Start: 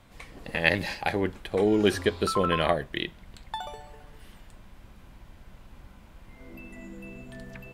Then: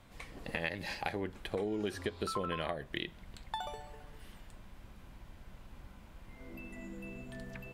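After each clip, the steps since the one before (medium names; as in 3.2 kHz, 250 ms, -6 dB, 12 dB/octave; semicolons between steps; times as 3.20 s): compression 10:1, threshold -29 dBFS, peak gain reduction 14.5 dB; trim -3 dB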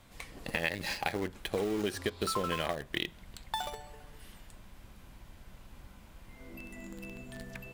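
treble shelf 4.1 kHz +7 dB; in parallel at -8 dB: bit crusher 6-bit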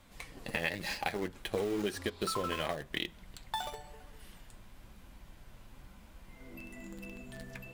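flange 0.98 Hz, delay 3.3 ms, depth 5.9 ms, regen -51%; trim +2.5 dB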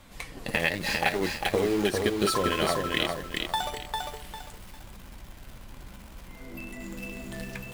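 bit-crushed delay 400 ms, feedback 35%, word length 9-bit, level -3.5 dB; trim +7.5 dB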